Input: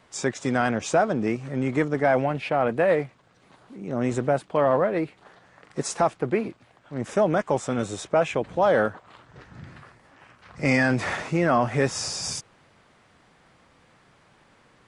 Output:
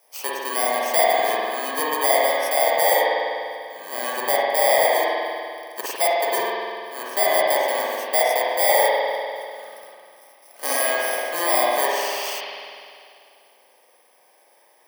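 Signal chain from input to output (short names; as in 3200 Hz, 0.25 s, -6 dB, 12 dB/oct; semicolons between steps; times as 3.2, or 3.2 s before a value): FFT order left unsorted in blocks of 32 samples; ladder high-pass 510 Hz, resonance 30%; spring tank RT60 2.3 s, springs 49 ms, chirp 25 ms, DRR -6 dB; gain +6 dB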